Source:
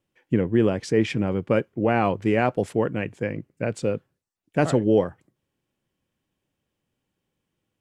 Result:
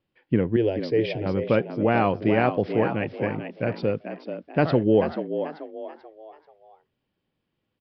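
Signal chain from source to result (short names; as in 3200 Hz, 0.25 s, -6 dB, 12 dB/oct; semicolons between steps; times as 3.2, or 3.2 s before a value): 0.56–1.26 fixed phaser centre 490 Hz, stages 4; downsampling 11025 Hz; frequency-shifting echo 0.436 s, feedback 37%, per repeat +73 Hz, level -9 dB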